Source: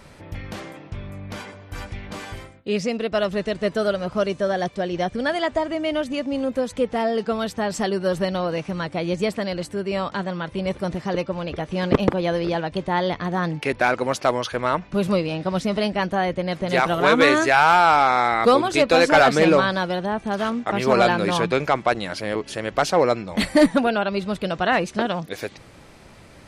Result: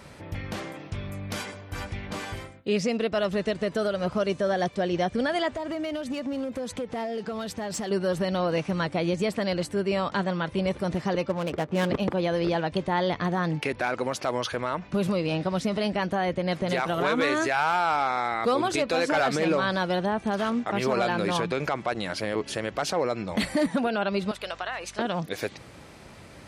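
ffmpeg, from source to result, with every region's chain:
-filter_complex "[0:a]asettb=1/sr,asplit=3[s0][s1][s2];[s0]atrim=end=0.794[s3];[s1]atrim=start=0.79:end=1.61,asetpts=PTS-STARTPTS,afade=t=in:d=0.004:c=qsin,afade=t=out:st=0.816:d=0.004:c=qsin,highshelf=f=4200:g=9,bandreject=f=940:w=17[s4];[s2]atrim=start=1.606[s5];[s3][s4]acrossfade=d=0.004:c1=hsin:c2=qsin[s6];[s6][s5]acrossfade=d=0.004:c1=qsin:c2=hsin,asettb=1/sr,asplit=3[s7][s8][s9];[s7]atrim=end=5.534[s10];[s8]atrim=start=5.53:end=7.91,asetpts=PTS-STARTPTS,afade=t=in:d=0.004:c=qsin,afade=t=out:st=2.376:d=0.004:c=qsin,acompressor=threshold=0.0501:ratio=16:attack=3.2:release=140:knee=1:detection=peak,asoftclip=type=hard:threshold=0.0501[s11];[s9]atrim=start=7.906[s12];[s10][s11]acrossfade=d=0.004:c1=hsin:c2=qsin[s13];[s13][s12]acrossfade=d=0.004:c1=qsin:c2=hsin,asettb=1/sr,asplit=3[s14][s15][s16];[s14]atrim=end=11.294[s17];[s15]atrim=start=11.29:end=11.9,asetpts=PTS-STARTPTS,afade=t=in:d=0.004:c=qsin,afade=t=out:st=0.606:d=0.004:c=qsin,highpass=120,adynamicsmooth=sensitivity=6.5:basefreq=510[s18];[s16]atrim=start=11.896[s19];[s17][s18]acrossfade=d=0.004:c1=hsin:c2=qsin[s20];[s20][s19]acrossfade=d=0.004:c1=qsin:c2=hsin,asettb=1/sr,asplit=3[s21][s22][s23];[s21]atrim=end=24.314[s24];[s22]atrim=start=24.31:end=24.99,asetpts=PTS-STARTPTS,afade=t=in:d=0.004:c=qsin,afade=t=out:st=0.676:d=0.004:c=qsin,highpass=760,acompressor=threshold=0.0447:ratio=12:attack=3.2:release=140:knee=1:detection=peak,aeval=exprs='val(0)+0.00316*(sin(2*PI*50*n/s)+sin(2*PI*2*50*n/s)/2+sin(2*PI*3*50*n/s)/3+sin(2*PI*4*50*n/s)/4+sin(2*PI*5*50*n/s)/5)':c=same[s25];[s23]atrim=start=24.986[s26];[s24][s25]acrossfade=d=0.004:c1=hsin:c2=qsin[s27];[s27][s26]acrossfade=d=0.004:c1=qsin:c2=hsin,highpass=50,alimiter=limit=0.158:level=0:latency=1:release=98"

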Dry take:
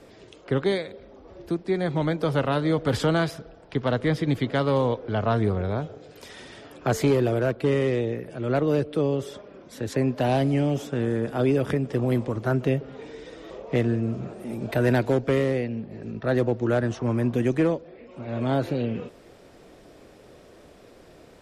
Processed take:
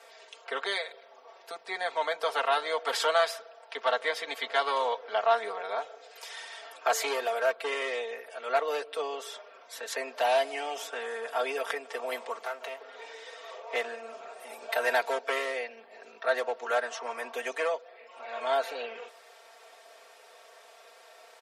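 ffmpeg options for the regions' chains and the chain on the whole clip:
-filter_complex "[0:a]asettb=1/sr,asplit=3[s0][s1][s2];[s0]atrim=end=12.384[s3];[s1]atrim=start=12.38:end=13.5,asetpts=PTS-STARTPTS,afade=t=in:d=0.004:c=qsin,afade=t=out:st=1.116:d=0.004:c=qsin,acompressor=threshold=0.0631:ratio=10:attack=3.2:release=140:knee=1:detection=peak,aeval=exprs='clip(val(0),-1,0.0211)':c=same[s4];[s2]atrim=start=13.496[s5];[s3][s4]acrossfade=d=0.004:c1=hsin:c2=qsin[s6];[s6][s5]acrossfade=d=0.004:c1=qsin:c2=hsin,highpass=f=650:w=0.5412,highpass=f=650:w=1.3066,aecho=1:1:4.4:0.95"

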